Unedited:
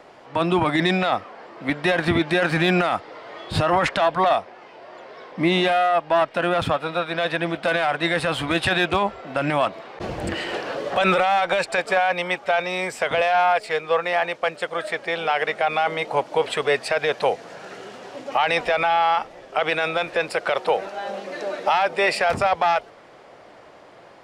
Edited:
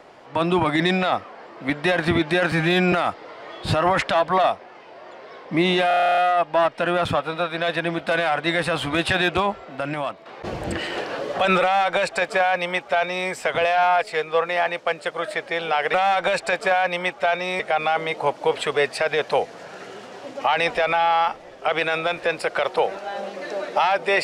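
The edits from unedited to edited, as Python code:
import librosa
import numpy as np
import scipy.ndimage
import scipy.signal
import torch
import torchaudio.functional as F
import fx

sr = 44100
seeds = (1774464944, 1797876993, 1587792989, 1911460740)

y = fx.edit(x, sr, fx.stretch_span(start_s=2.52, length_s=0.27, factor=1.5),
    fx.stutter(start_s=5.74, slice_s=0.03, count=11),
    fx.fade_out_to(start_s=8.94, length_s=0.88, floor_db=-10.0),
    fx.duplicate(start_s=11.19, length_s=1.66, to_s=15.5), tone=tone)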